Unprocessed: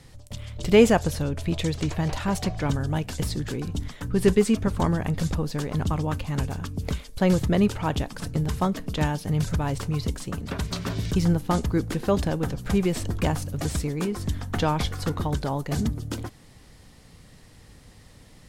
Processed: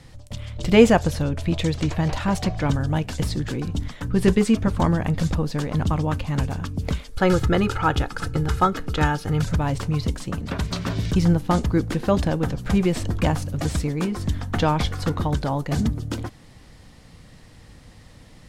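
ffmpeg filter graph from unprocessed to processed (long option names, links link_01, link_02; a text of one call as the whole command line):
ffmpeg -i in.wav -filter_complex "[0:a]asettb=1/sr,asplit=3[link_01][link_02][link_03];[link_01]atrim=end=7.114[link_04];[link_02]atrim=start=7.11:end=9.42,asetpts=PTS-STARTPTS,afade=type=in:duration=0.004:curve=qsin,afade=type=out:start_time=2.306:duration=0.004:curve=qsin,equalizer=frequency=1400:width_type=o:width=0.28:gain=14,aecho=1:1:2.4:0.48,atrim=end_sample=101871[link_05];[link_03]atrim=start=9.416[link_06];[link_04][link_05]acrossfade=duration=0.004:curve1=hsin:curve2=qsin[link_07];[link_07][link_06]acrossfade=duration=0.004:curve1=qsin:curve2=hsin,highshelf=frequency=8000:gain=-8.5,bandreject=frequency=410:width=12,volume=3.5dB" out.wav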